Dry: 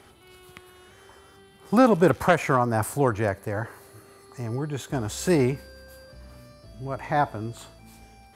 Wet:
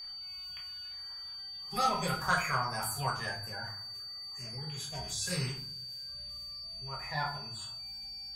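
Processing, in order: bin magnitudes rounded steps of 30 dB; bell 74 Hz +4.5 dB 1.5 oct; added harmonics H 3 -21 dB, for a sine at -4.5 dBFS; passive tone stack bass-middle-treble 10-0-10; reverb RT60 0.50 s, pre-delay 4 ms, DRR -3 dB; whine 4600 Hz -39 dBFS; gain -2 dB

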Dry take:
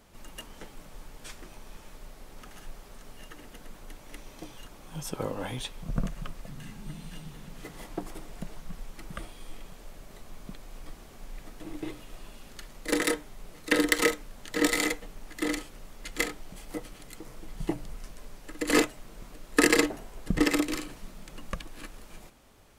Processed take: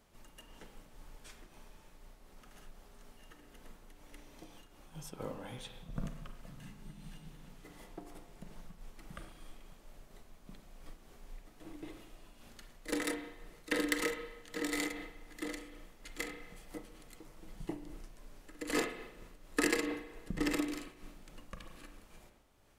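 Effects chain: spring tank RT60 1.1 s, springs 34/44 ms, chirp 25 ms, DRR 6.5 dB; noise-modulated level, depth 65%; gain -7 dB

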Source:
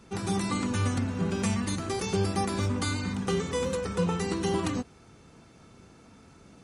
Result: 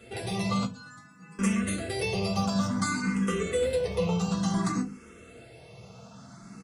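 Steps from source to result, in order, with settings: rattling part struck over -27 dBFS, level -34 dBFS; HPF 83 Hz; notches 50/100/150/200 Hz; comb 1.5 ms, depth 31%; in parallel at -1.5 dB: compressor, threshold -42 dBFS, peak gain reduction 18 dB; 0.65–1.39 on the sum: metallic resonator 150 Hz, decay 0.78 s, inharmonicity 0.008; soft clip -18 dBFS, distortion -23 dB; reverb RT60 0.20 s, pre-delay 4 ms, DRR 1.5 dB; endless phaser +0.56 Hz

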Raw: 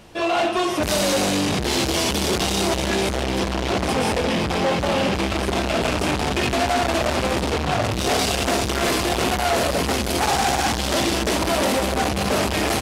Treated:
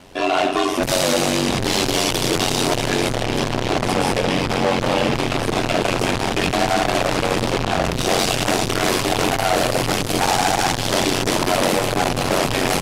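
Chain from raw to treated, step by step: notches 50/100/150/200 Hz; ring modulator 46 Hz; gain +5 dB

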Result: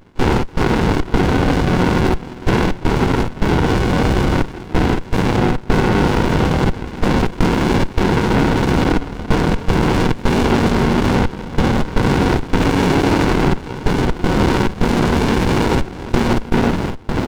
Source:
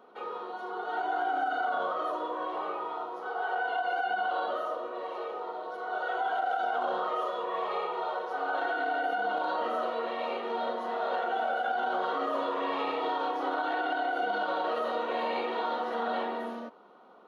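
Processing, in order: spectral limiter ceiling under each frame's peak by 15 dB; reverse; upward compressor, threshold -35 dBFS; reverse; chorus 0.17 Hz, delay 20 ms, depth 4.8 ms; step gate ".x.xx.xxxxx." 79 bpm -24 dB; on a send: early reflections 34 ms -12.5 dB, 50 ms -7.5 dB; on the sum: maximiser +34 dB; running maximum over 65 samples

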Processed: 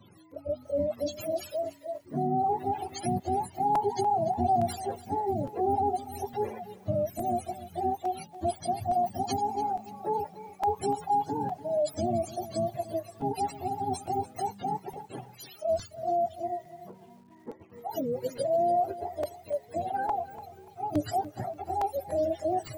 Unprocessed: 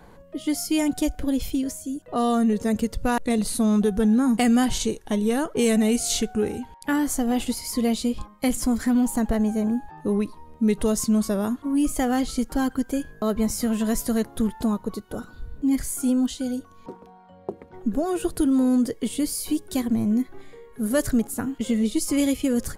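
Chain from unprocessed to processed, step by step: spectrum mirrored in octaves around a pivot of 420 Hz; crackling interface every 0.86 s, samples 128, repeat, from 0.31; lo-fi delay 0.291 s, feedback 35%, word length 8-bit, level -15 dB; gain -5 dB

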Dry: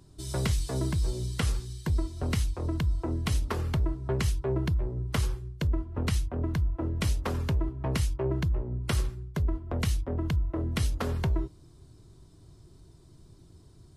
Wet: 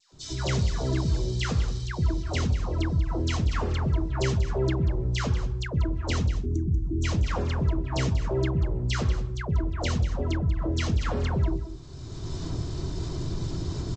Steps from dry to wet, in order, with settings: recorder AGC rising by 23 dB/s; notches 50/100/150/200/250/300/350/400/450 Hz; dispersion lows, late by 0.125 s, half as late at 1300 Hz; spectral gain 6.27–7.04, 420–5700 Hz -29 dB; on a send: echo 0.189 s -12 dB; on the sum: gain +3.5 dB; G.722 64 kbps 16000 Hz

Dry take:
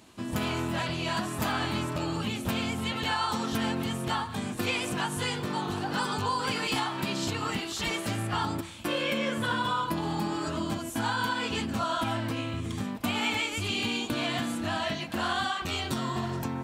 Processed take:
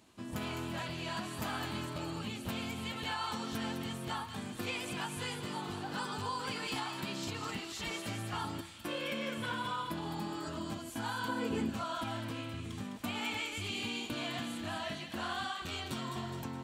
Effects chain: 11.28–11.7 graphic EQ 125/250/500/4000 Hz +4/+7/+7/-11 dB; thin delay 0.208 s, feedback 49%, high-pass 2100 Hz, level -6.5 dB; gain -8.5 dB

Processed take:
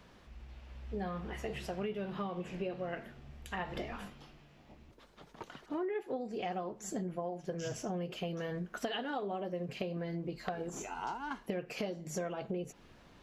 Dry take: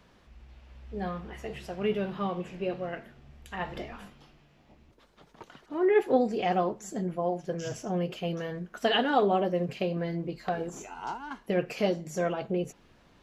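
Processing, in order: compressor 12:1, threshold -35 dBFS, peak gain reduction 18 dB; gain +1 dB

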